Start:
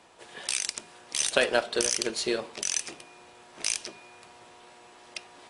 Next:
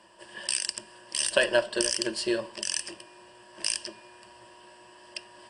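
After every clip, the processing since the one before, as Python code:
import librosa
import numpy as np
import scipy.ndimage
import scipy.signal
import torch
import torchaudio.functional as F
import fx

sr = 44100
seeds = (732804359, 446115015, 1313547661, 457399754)

y = fx.ripple_eq(x, sr, per_octave=1.3, db=13)
y = F.gain(torch.from_numpy(y), -2.5).numpy()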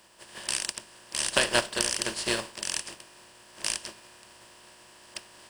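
y = fx.spec_flatten(x, sr, power=0.46)
y = F.gain(torch.from_numpy(y), -1.0).numpy()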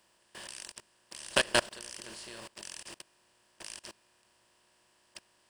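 y = fx.level_steps(x, sr, step_db=23)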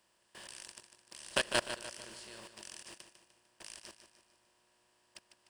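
y = fx.echo_feedback(x, sr, ms=150, feedback_pct=47, wet_db=-10)
y = F.gain(torch.from_numpy(y), -5.0).numpy()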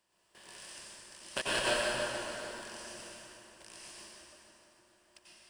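y = fx.rev_plate(x, sr, seeds[0], rt60_s=3.5, hf_ratio=0.65, predelay_ms=80, drr_db=-8.5)
y = F.gain(torch.from_numpy(y), -5.5).numpy()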